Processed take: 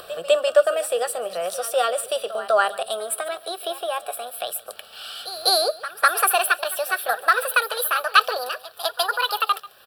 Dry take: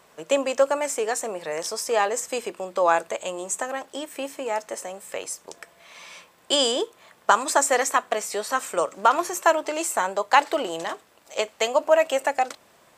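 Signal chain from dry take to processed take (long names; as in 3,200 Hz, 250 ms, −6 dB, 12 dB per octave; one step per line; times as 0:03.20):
gliding playback speed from 104% → 159%
in parallel at −1.5 dB: upward compression, threshold −25 dBFS
on the sum: high-shelf EQ 5,700 Hz −6.5 dB
phaser with its sweep stopped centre 1,400 Hz, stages 8
echo ahead of the sound 200 ms −15 dB
surface crackle 14 per second −47 dBFS
bass and treble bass −1 dB, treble +8 dB
mains-hum notches 50/100/150/200 Hz
on a send: single-tap delay 141 ms −19.5 dB
on the sum: level −1 dB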